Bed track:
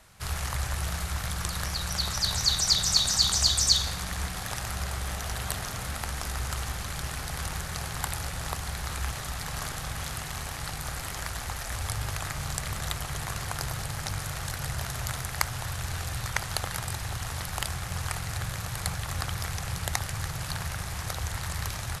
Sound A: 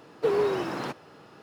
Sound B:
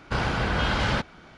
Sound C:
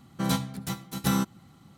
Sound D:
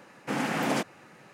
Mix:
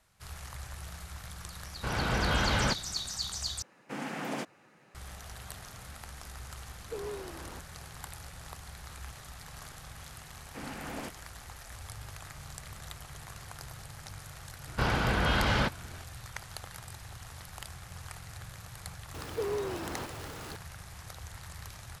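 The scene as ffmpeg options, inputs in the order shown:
-filter_complex "[2:a]asplit=2[a][b];[4:a]asplit=2[c][d];[1:a]asplit=2[e][f];[0:a]volume=-12.5dB[g];[a]dynaudnorm=f=100:g=5:m=6dB[h];[f]aeval=exprs='val(0)+0.5*0.0335*sgn(val(0))':c=same[i];[g]asplit=2[j][k];[j]atrim=end=3.624[l];[c]atrim=end=1.33,asetpts=PTS-STARTPTS,volume=-8.5dB[m];[k]atrim=start=4.946[n];[h]atrim=end=1.37,asetpts=PTS-STARTPTS,volume=-9.5dB,afade=t=in:d=0.004:c=hsin,afade=t=out:st=1.366:d=0.004:c=hsin,adelay=1720[o];[e]atrim=end=1.42,asetpts=PTS-STARTPTS,volume=-15dB,afade=t=in:d=0.004:c=hsin,afade=t=out:st=1.416:d=0.004:c=hsin,adelay=6680[p];[d]atrim=end=1.33,asetpts=PTS-STARTPTS,volume=-13dB,afade=t=in:d=0.004:c=hsin,afade=t=out:st=1.326:d=0.004:c=hsin,adelay=10270[q];[b]atrim=end=1.37,asetpts=PTS-STARTPTS,volume=-2.5dB,afade=t=in:d=0.004:c=hsin,afade=t=out:st=1.366:d=0.004:c=hsin,adelay=14670[r];[i]atrim=end=1.42,asetpts=PTS-STARTPTS,volume=-10.5dB,afade=t=in:d=0.004:c=hsin,afade=t=out:st=1.416:d=0.004:c=hsin,adelay=19140[s];[l][m]acrossfade=d=0.004:c1=hsin:c2=hsin[t];[t][n]acrossfade=d=0.004:c1=hsin:c2=hsin[u];[u][o][p][q][r][s]amix=inputs=6:normalize=0"

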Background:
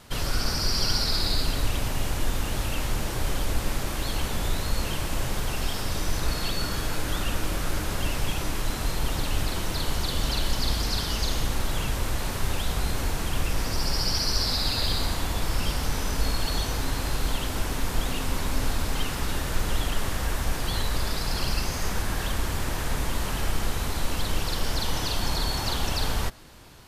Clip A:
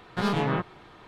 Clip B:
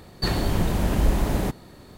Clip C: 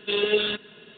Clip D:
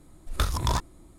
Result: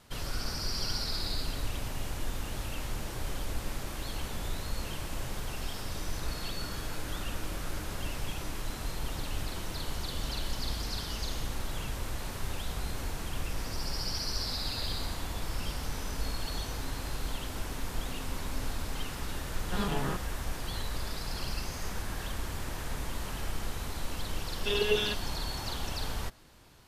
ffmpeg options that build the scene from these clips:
-filter_complex "[0:a]volume=-8.5dB[a];[1:a]bandreject=f=2.2k:w=12,atrim=end=1.07,asetpts=PTS-STARTPTS,volume=-7.5dB,afade=t=in:d=0.004:c=hsin,afade=t=out:st=1.066:d=0.004:c=hsin,adelay=19550[b];[3:a]atrim=end=0.97,asetpts=PTS-STARTPTS,volume=-5.5dB,afade=t=in:d=0.004:c=hsin,afade=t=out:st=0.966:d=0.004:c=hsin,adelay=24580[c];[a][b][c]amix=inputs=3:normalize=0"

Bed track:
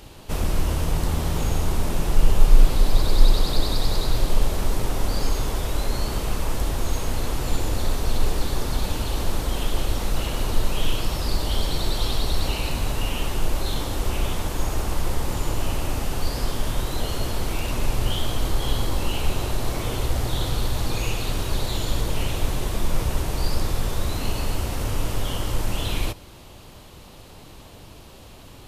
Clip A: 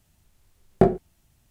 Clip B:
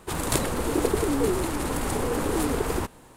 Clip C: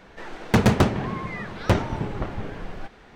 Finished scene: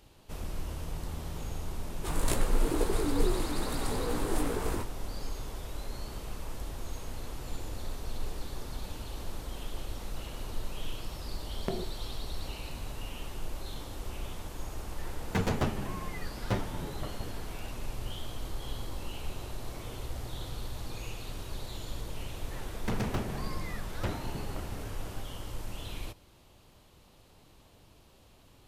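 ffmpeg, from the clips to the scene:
-filter_complex "[3:a]asplit=2[a][b];[0:a]volume=-14.5dB[c];[2:a]flanger=delay=16.5:depth=4:speed=2.3[d];[1:a]acompressor=threshold=-25dB:ratio=6:attack=3.2:release=140:knee=1:detection=peak[e];[a]asplit=2[f][g];[g]adelay=8.9,afreqshift=-1.5[h];[f][h]amix=inputs=2:normalize=1[i];[b]asoftclip=type=tanh:threshold=-18.5dB[j];[d]atrim=end=3.16,asetpts=PTS-STARTPTS,volume=-4.5dB,afade=t=in:d=0.004:c=hsin,afade=t=out:st=3.156:d=0.004:c=hsin,adelay=1960[k];[e]atrim=end=1.5,asetpts=PTS-STARTPTS,volume=-5dB,afade=t=in:d=0.004:c=hsin,afade=t=out:st=1.496:d=0.004:c=hsin,adelay=10870[l];[i]atrim=end=3.15,asetpts=PTS-STARTPTS,volume=-8dB,afade=t=in:d=0.004:c=hsin,afade=t=out:st=3.146:d=0.004:c=hsin,adelay=14810[m];[j]atrim=end=3.15,asetpts=PTS-STARTPTS,volume=-10dB,afade=t=in:d=0.004:c=hsin,afade=t=out:st=3.146:d=0.004:c=hsin,adelay=22340[n];[c][k][l][m][n]amix=inputs=5:normalize=0"

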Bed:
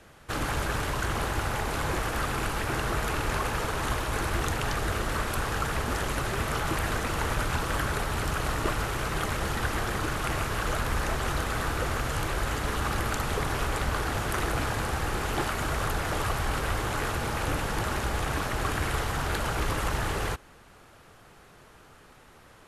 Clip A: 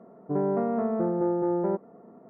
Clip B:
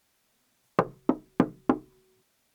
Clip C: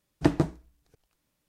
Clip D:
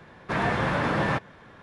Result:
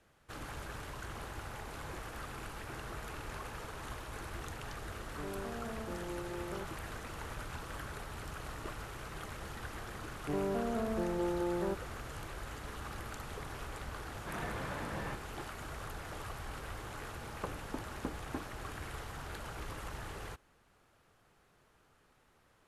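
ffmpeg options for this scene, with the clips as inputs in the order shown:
-filter_complex "[1:a]asplit=2[a][b];[0:a]volume=-15dB[c];[2:a]alimiter=limit=-15dB:level=0:latency=1:release=71[d];[a]atrim=end=2.29,asetpts=PTS-STARTPTS,volume=-17dB,afade=t=in:d=0.004:c=hsin,afade=t=out:st=2.286:d=0.004:c=hsin,adelay=4880[e];[b]atrim=end=2.29,asetpts=PTS-STARTPTS,volume=-8.5dB,afade=t=in:d=0.004:c=hsin,afade=t=out:st=2.286:d=0.004:c=hsin,adelay=9980[f];[4:a]atrim=end=1.62,asetpts=PTS-STARTPTS,volume=-16.5dB,afade=t=in:d=0.004:c=hsin,afade=t=out:st=1.616:d=0.004:c=hsin,adelay=13970[g];[d]atrim=end=2.54,asetpts=PTS-STARTPTS,volume=-13dB,afade=t=in:d=0.004:c=hsin,afade=t=out:st=2.536:d=0.004:c=hsin,adelay=16650[h];[c][e][f][g][h]amix=inputs=5:normalize=0"

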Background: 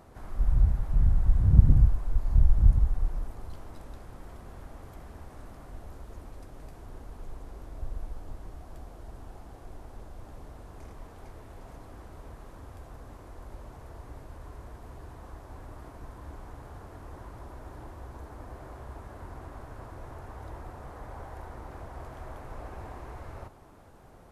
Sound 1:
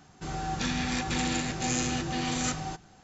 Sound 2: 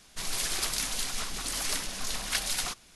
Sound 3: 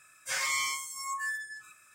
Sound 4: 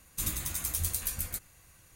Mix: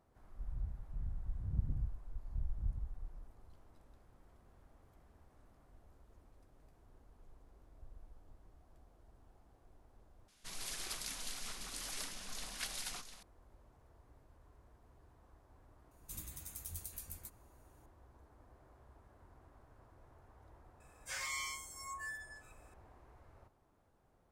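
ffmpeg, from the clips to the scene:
-filter_complex "[0:a]volume=-19dB[a];[2:a]aecho=1:1:702:0.355[b];[4:a]equalizer=f=1.7k:w=0.35:g=-5[c];[a]asplit=2[d][e];[d]atrim=end=10.284[f];[b]atrim=end=2.95,asetpts=PTS-STARTPTS,volume=-12.5dB[g];[e]atrim=start=13.226[h];[c]atrim=end=1.95,asetpts=PTS-STARTPTS,volume=-14dB,afade=t=in:d=0.004:c=hsin,afade=t=out:st=1.946:d=0.004:c=hsin,adelay=15910[i];[3:a]atrim=end=1.94,asetpts=PTS-STARTPTS,volume=-10.5dB,afade=t=in:d=0.004:c=hsin,afade=t=out:st=1.936:d=0.004:c=hsin,adelay=20800[j];[f][g]acrossfade=d=0.004:c1=hsin:c2=hsin[k];[k][h]acrossfade=d=0.004:c1=hsin:c2=hsin[l];[l][i][j]amix=inputs=3:normalize=0"

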